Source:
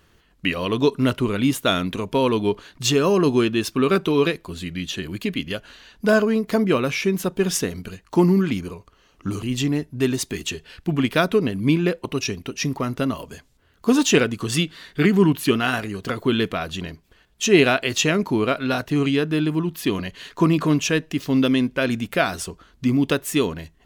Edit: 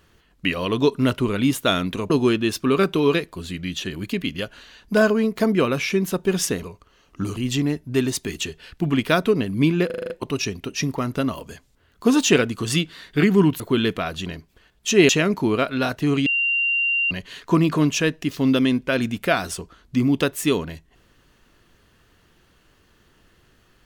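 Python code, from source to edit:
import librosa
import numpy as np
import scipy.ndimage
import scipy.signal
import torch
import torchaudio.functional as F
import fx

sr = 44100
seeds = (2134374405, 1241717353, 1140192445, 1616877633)

y = fx.edit(x, sr, fx.cut(start_s=2.1, length_s=1.12),
    fx.cut(start_s=7.75, length_s=0.94),
    fx.stutter(start_s=11.92, slice_s=0.04, count=7),
    fx.cut(start_s=15.42, length_s=0.73),
    fx.cut(start_s=17.64, length_s=0.34),
    fx.bleep(start_s=19.15, length_s=0.85, hz=2770.0, db=-18.0), tone=tone)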